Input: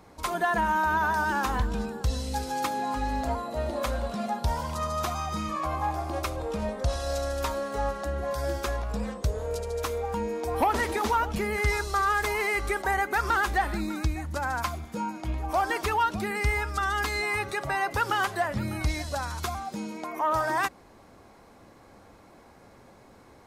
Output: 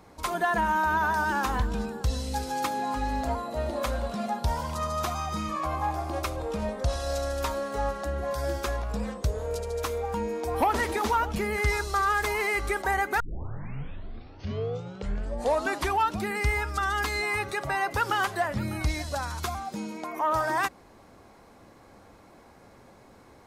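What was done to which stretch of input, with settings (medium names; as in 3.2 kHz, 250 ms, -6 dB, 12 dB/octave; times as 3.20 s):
13.20 s: tape start 2.96 s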